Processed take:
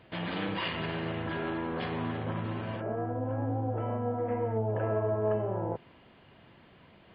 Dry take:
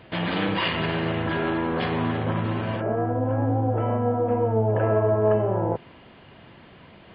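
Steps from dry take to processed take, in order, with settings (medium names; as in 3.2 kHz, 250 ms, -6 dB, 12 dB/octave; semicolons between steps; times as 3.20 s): 4.18–4.58 s: peaking EQ 2 kHz +11.5 dB 0.49 oct; trim -8.5 dB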